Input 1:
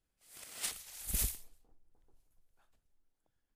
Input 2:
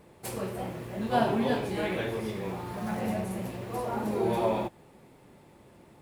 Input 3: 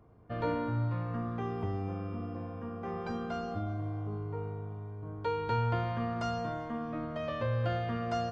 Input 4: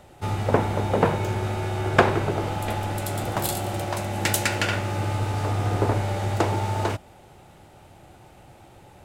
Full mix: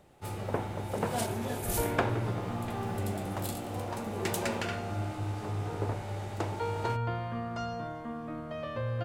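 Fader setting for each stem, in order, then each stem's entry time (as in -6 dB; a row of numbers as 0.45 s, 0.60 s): -1.0 dB, -9.5 dB, -2.0 dB, -12.0 dB; 0.55 s, 0.00 s, 1.35 s, 0.00 s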